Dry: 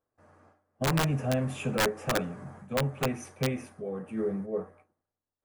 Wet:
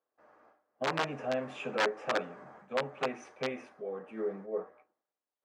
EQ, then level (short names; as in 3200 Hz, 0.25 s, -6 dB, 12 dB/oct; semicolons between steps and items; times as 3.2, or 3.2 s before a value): HPF 400 Hz 12 dB/oct; air absorption 150 m; 0.0 dB